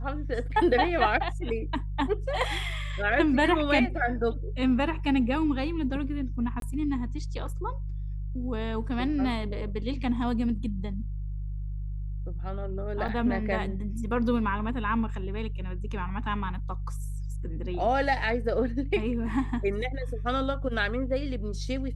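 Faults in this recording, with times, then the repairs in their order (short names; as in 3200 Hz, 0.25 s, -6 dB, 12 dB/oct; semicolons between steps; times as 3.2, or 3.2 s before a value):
hum 50 Hz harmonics 3 -33 dBFS
6.6–6.62 gap 22 ms
13.08–13.09 gap 5.6 ms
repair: de-hum 50 Hz, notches 3; interpolate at 6.6, 22 ms; interpolate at 13.08, 5.6 ms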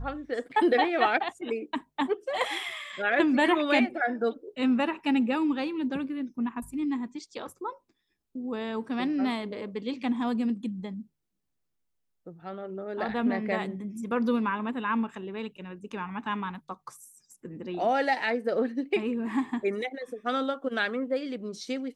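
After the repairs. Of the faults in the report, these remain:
none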